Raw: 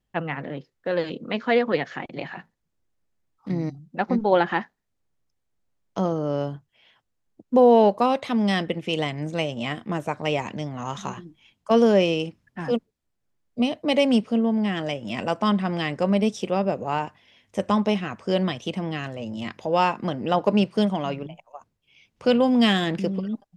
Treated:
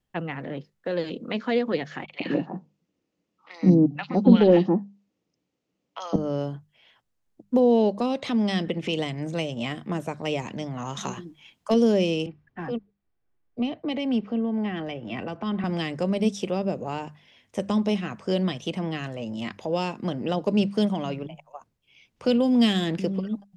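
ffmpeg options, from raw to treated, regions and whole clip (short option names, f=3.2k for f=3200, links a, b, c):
-filter_complex "[0:a]asettb=1/sr,asplit=3[a][b][c];[a]atrim=end=2.044[d];[b]atrim=start=2.04:end=6.16,asetpts=PTS-STARTPTS,afade=t=in:d=0.004:c=qsin,afade=t=out:st=4.116:d=0.004:c=qsin,highpass=140,equalizer=f=190:t=q:w=4:g=8,equalizer=f=300:t=q:w=4:g=9,equalizer=f=490:t=q:w=4:g=6,equalizer=f=1.6k:t=q:w=4:g=-6,equalizer=f=2.8k:t=q:w=4:g=5,lowpass=f=6.4k:w=0.5412,lowpass=f=6.4k:w=1.3066,acrossover=split=980|3400[e][f][g];[g]adelay=40[h];[e]adelay=160[i];[i][f][h]amix=inputs=3:normalize=0,atrim=end_sample=181692,acontrast=34[j];[c]atrim=start=6.156[k];[d][j]acrossfade=d=0.004:c1=hsin:c2=qsin[l];[l][k]acrossfade=d=0.004:c1=qsin:c2=hsin,asettb=1/sr,asplit=3[m][n][o];[m]atrim=end=7.594[p];[n]atrim=start=7.59:end=8.99,asetpts=PTS-STARTPTS,afade=t=in:d=0.004:c=qsin,afade=t=out:st=1.396:d=0.004:c=qsin,lowpass=7.3k,acompressor=mode=upward:threshold=-22dB:ratio=2.5:attack=3.2:release=140:knee=2.83:detection=peak[q];[o]atrim=start=8.986[r];[p][q]acrossfade=d=0.004:c1=hsin:c2=qsin[s];[s][r]acrossfade=d=0.004:c1=qsin:c2=hsin,asettb=1/sr,asplit=3[t][u][v];[t]atrim=end=10.974[w];[u]atrim=start=10.97:end=11.74,asetpts=PTS-STARTPTS,afade=t=in:d=0.004:c=qsin,afade=t=out:st=0.766:d=0.004:c=qsin,lowshelf=f=190:g=-8.5,acontrast=37[x];[v]atrim=start=11.736[y];[w][x]acrossfade=d=0.004:c1=hsin:c2=qsin[z];[z][y]acrossfade=d=0.004:c1=qsin:c2=hsin,asettb=1/sr,asplit=3[aa][ab][ac];[aa]atrim=end=12.264[ad];[ab]atrim=start=12.26:end=15.64,asetpts=PTS-STARTPTS,afade=t=in:d=0.004:c=qsin,afade=t=out:st=3.376:d=0.004:c=qsin,lowpass=2.5k,aecho=1:1:2.6:0.3,atrim=end_sample=149058,acrossover=split=260|3000[ae][af][ag];[af]acompressor=threshold=-30dB:ratio=6:attack=3.2:release=140:knee=2.83:detection=peak[ah];[ae][ah][ag]amix=inputs=3:normalize=0[ai];[ac]atrim=start=15.636[aj];[ad][ai]acrossfade=d=0.004:c1=hsin:c2=qsin[ak];[ak][aj]acrossfade=d=0.004:c1=qsin:c2=hsin,bandreject=f=50:t=h:w=6,bandreject=f=100:t=h:w=6,bandreject=f=150:t=h:w=6,bandreject=f=200:t=h:w=6,acrossover=split=490|3000[al][am][an];[am]acompressor=threshold=-33dB:ratio=6[ao];[al][ao][an]amix=inputs=3:normalize=0"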